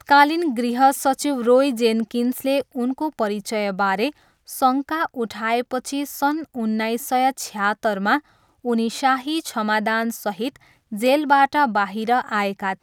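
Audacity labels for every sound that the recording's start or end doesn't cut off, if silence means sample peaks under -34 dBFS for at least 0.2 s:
4.490000	8.190000	sound
8.650000	10.560000	sound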